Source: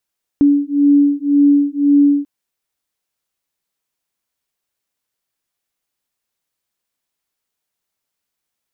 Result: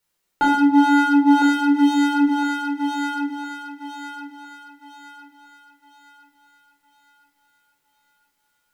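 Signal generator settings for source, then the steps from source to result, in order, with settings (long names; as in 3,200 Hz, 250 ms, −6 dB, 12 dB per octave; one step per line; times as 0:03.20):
two tones that beat 285 Hz, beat 1.9 Hz, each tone −12.5 dBFS 1.84 s
wave folding −16.5 dBFS
on a send: feedback echo with a high-pass in the loop 1,009 ms, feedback 44%, high-pass 440 Hz, level −3.5 dB
on the sum: rectangular room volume 720 cubic metres, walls furnished, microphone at 4.5 metres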